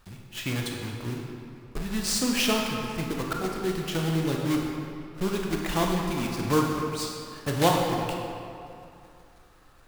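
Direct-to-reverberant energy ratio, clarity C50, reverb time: 0.0 dB, 1.5 dB, 2.6 s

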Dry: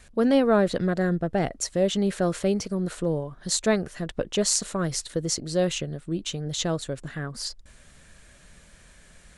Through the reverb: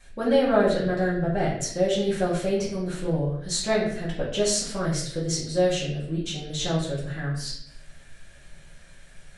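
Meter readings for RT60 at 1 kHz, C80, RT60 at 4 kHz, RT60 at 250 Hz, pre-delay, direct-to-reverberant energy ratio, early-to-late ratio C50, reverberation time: 0.55 s, 7.0 dB, 0.60 s, 0.80 s, 4 ms, −9.0 dB, 3.5 dB, 0.65 s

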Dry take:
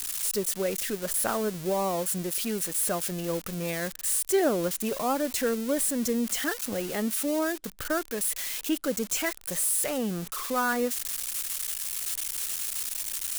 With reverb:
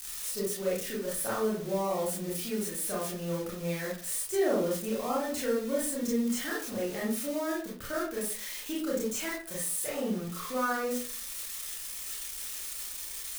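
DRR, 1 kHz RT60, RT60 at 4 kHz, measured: −6.0 dB, 0.45 s, 0.25 s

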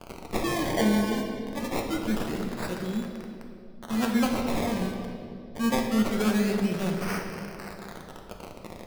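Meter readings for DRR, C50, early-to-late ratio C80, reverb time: 1.0 dB, 4.0 dB, 5.0 dB, 2.7 s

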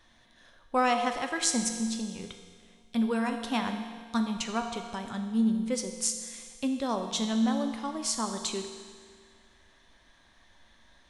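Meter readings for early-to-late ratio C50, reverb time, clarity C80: 6.5 dB, 1.8 s, 7.5 dB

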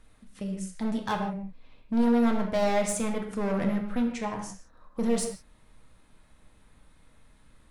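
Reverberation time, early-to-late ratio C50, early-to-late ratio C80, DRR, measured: non-exponential decay, 6.0 dB, 8.0 dB, 1.5 dB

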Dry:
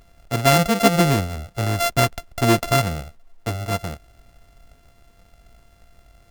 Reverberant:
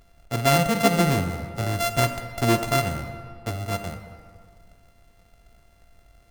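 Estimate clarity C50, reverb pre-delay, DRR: 9.0 dB, 33 ms, 8.5 dB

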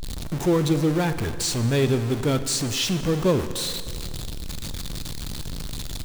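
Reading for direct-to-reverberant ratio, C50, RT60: 10.5 dB, 11.5 dB, 2.3 s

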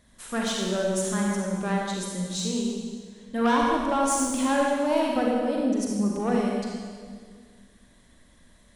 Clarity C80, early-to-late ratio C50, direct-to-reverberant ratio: 1.0 dB, −1.0 dB, −2.5 dB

